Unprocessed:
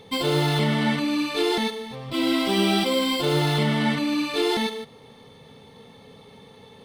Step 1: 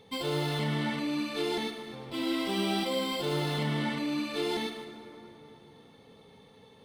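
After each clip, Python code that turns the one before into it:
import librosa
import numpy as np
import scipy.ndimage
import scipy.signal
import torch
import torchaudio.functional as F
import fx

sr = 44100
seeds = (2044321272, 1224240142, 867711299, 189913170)

y = fx.rev_plate(x, sr, seeds[0], rt60_s=3.5, hf_ratio=0.5, predelay_ms=0, drr_db=8.0)
y = F.gain(torch.from_numpy(y), -9.0).numpy()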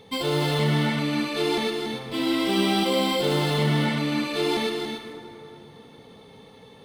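y = x + 10.0 ** (-6.5 / 20.0) * np.pad(x, (int(284 * sr / 1000.0), 0))[:len(x)]
y = F.gain(torch.from_numpy(y), 6.5).numpy()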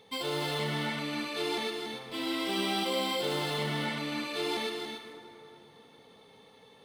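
y = fx.low_shelf(x, sr, hz=280.0, db=-10.5)
y = F.gain(torch.from_numpy(y), -5.5).numpy()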